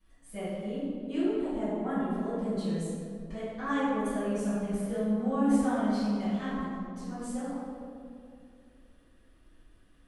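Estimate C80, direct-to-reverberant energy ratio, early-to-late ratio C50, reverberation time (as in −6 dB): −1.0 dB, −17.5 dB, −4.0 dB, 2.4 s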